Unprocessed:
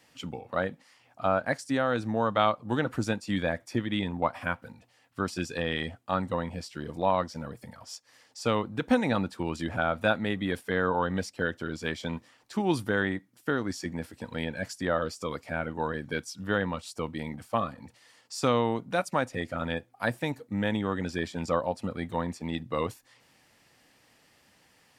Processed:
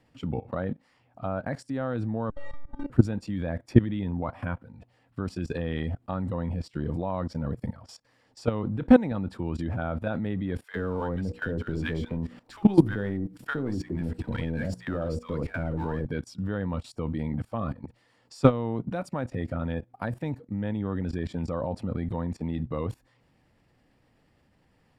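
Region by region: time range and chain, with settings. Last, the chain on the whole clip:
2.3–2.9 minimum comb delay 7.2 ms + metallic resonator 280 Hz, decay 0.69 s, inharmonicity 0.008
10.64–16.05 G.711 law mismatch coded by mu + notches 60/120/180/240/300/360/420/480/540 Hz + bands offset in time highs, lows 70 ms, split 1000 Hz
whole clip: tilt -3.5 dB/oct; notch 6200 Hz, Q 9.7; level quantiser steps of 18 dB; gain +6.5 dB

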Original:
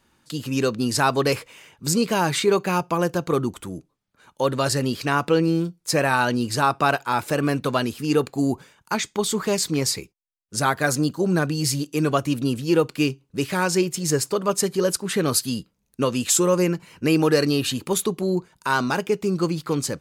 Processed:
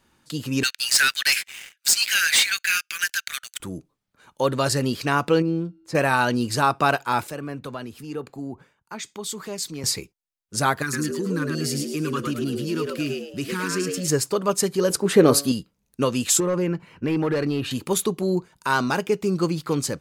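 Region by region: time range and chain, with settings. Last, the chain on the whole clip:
0.63–3.6 steep high-pass 1500 Hz 72 dB/oct + sample leveller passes 3
5.42–5.95 LPF 1200 Hz 6 dB/oct + resonator 65 Hz, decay 1.8 s, harmonics odd, mix 30%
7.27–9.84 compressor 2.5:1, threshold -34 dBFS + three-band expander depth 100%
10.82–14.08 Chebyshev band-stop 350–1100 Hz + compressor 2:1, threshold -26 dBFS + frequency-shifting echo 0.108 s, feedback 35%, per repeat +91 Hz, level -3.5 dB
14.9–15.52 bell 460 Hz +10 dB 2.4 oct + de-hum 141.3 Hz, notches 16
16.4–17.71 hard clip -14.5 dBFS + compressor 4:1, threshold -20 dBFS + tone controls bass +1 dB, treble -14 dB
whole clip: dry

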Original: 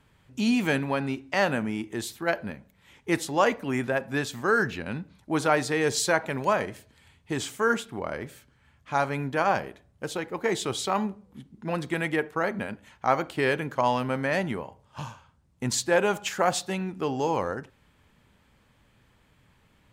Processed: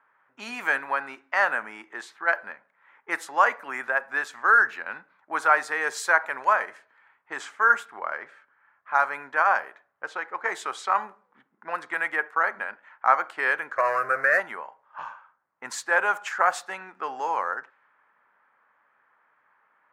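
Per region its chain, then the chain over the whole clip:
13.76–14.4 low shelf 260 Hz +10.5 dB + sample leveller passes 2 + fixed phaser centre 880 Hz, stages 6
whole clip: low-pass opened by the level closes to 1700 Hz, open at -23.5 dBFS; HPF 1200 Hz 12 dB/oct; resonant high shelf 2200 Hz -13 dB, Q 1.5; gain +7.5 dB

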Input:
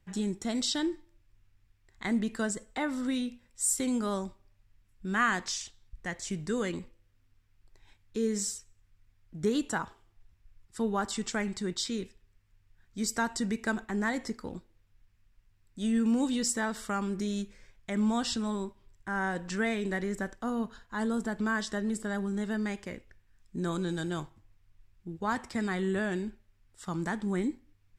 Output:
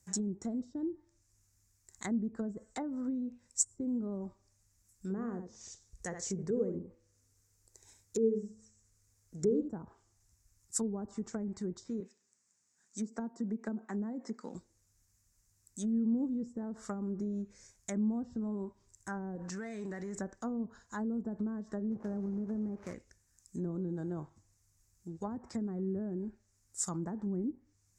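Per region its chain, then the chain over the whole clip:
5.1–9.71 bell 460 Hz +9.5 dB 0.42 oct + de-hum 107.8 Hz, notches 3 + echo 71 ms -7.5 dB
12–14.55 Chebyshev band-pass 200–8200 Hz, order 3 + bell 320 Hz -4 dB 0.28 oct
19.35–20.19 compressor 12:1, threshold -35 dBFS + sample leveller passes 1
21.91–22.94 delta modulation 16 kbps, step -41 dBFS + companded quantiser 4-bit
whole clip: HPF 51 Hz 12 dB/oct; treble ducked by the level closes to 390 Hz, closed at -27.5 dBFS; resonant high shelf 4600 Hz +14 dB, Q 3; gain -3.5 dB

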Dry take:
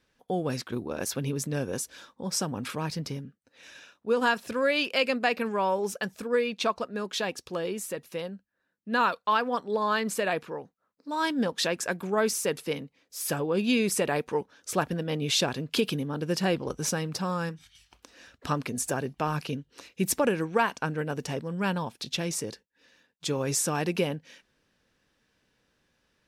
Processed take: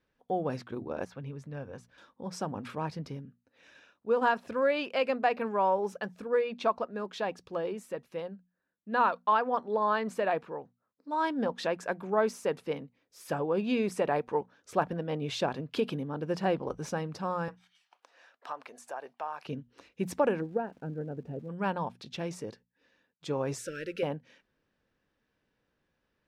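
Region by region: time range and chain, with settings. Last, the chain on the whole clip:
1.05–1.98 LPF 1600 Hz 6 dB/oct + bell 310 Hz -8.5 dB 2 oct + notch 370 Hz
17.48–19.46 resonant high-pass 730 Hz, resonance Q 1.6 + compressor 2.5:1, threshold -34 dBFS
20.4–21.48 running mean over 41 samples + crackle 470/s -48 dBFS
23.58–24.03 G.711 law mismatch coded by mu + brick-wall FIR band-stop 590–1300 Hz + bell 180 Hz -13.5 dB 1.6 oct
whole clip: LPF 1800 Hz 6 dB/oct; notches 60/120/180/240 Hz; dynamic EQ 800 Hz, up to +7 dB, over -40 dBFS, Q 0.96; gain -4.5 dB

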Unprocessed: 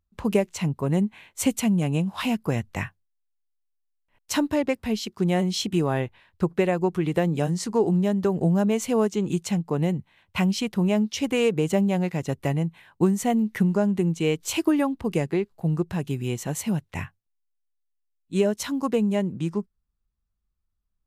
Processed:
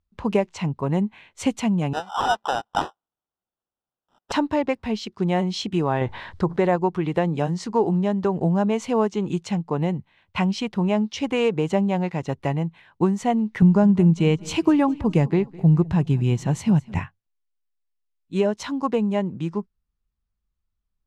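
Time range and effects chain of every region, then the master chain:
1.93–4.32 resonant high-pass 770 Hz, resonance Q 5.1 + sample-rate reducer 2200 Hz
6.01–6.76 bell 2600 Hz -8.5 dB 0.33 oct + fast leveller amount 50%
13.62–16.99 tone controls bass +10 dB, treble +2 dB + feedback echo 0.207 s, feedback 45%, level -21 dB
whole clip: LPF 5200 Hz 12 dB/oct; dynamic EQ 920 Hz, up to +7 dB, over -44 dBFS, Q 2

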